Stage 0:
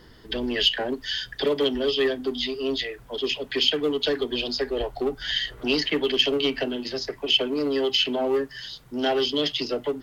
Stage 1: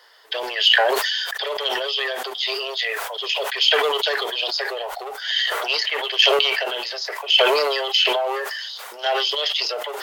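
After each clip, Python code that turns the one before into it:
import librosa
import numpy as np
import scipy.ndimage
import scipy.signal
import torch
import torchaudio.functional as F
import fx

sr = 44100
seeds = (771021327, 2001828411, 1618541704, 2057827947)

y = scipy.signal.sosfilt(scipy.signal.cheby2(4, 40, 290.0, 'highpass', fs=sr, output='sos'), x)
y = fx.sustainer(y, sr, db_per_s=24.0)
y = F.gain(torch.from_numpy(y), 3.5).numpy()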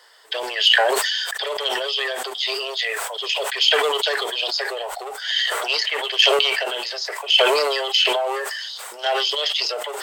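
y = fx.peak_eq(x, sr, hz=8100.0, db=13.0, octaves=0.31)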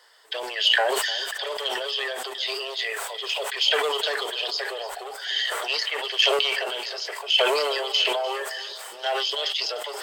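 y = fx.echo_feedback(x, sr, ms=299, feedback_pct=47, wet_db=-16.0)
y = F.gain(torch.from_numpy(y), -4.5).numpy()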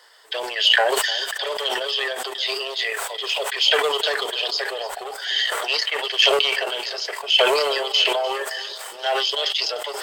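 y = fx.transient(x, sr, attack_db=-2, sustain_db=-7)
y = F.gain(torch.from_numpy(y), 4.5).numpy()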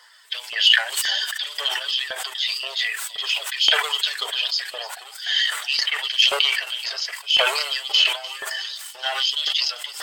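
y = fx.spec_quant(x, sr, step_db=15)
y = fx.filter_lfo_highpass(y, sr, shape='saw_up', hz=1.9, low_hz=790.0, high_hz=3300.0, q=0.74)
y = F.gain(torch.from_numpy(y), 2.0).numpy()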